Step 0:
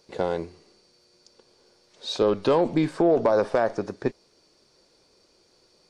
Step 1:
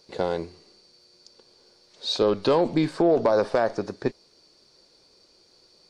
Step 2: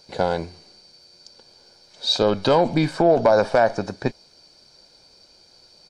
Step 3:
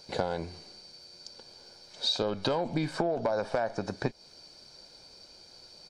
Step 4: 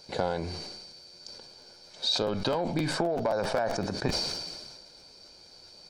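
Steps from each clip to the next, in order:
bell 4400 Hz +6.5 dB 0.5 oct
comb 1.3 ms, depth 46%; gain +4.5 dB
compressor 8:1, threshold -26 dBFS, peak gain reduction 14.5 dB
crackling interface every 0.13 s, samples 512, repeat, from 0.96; sustainer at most 33 dB/s

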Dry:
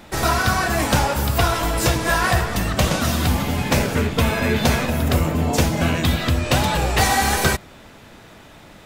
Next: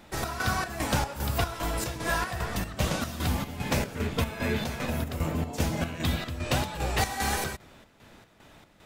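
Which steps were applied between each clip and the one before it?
chopper 2.5 Hz, depth 60%, duty 60%; gain -8.5 dB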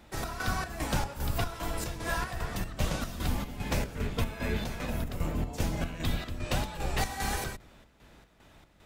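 octaver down 2 oct, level +1 dB; gain -4.5 dB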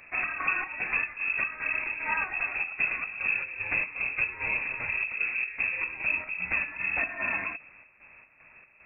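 inverted band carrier 2600 Hz; vocal rider 0.5 s

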